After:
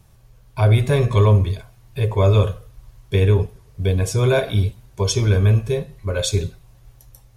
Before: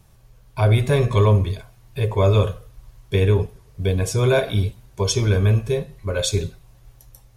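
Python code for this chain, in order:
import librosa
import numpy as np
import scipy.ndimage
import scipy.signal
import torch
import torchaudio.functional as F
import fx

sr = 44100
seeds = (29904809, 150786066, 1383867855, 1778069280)

y = fx.peak_eq(x, sr, hz=90.0, db=2.5, octaves=1.1)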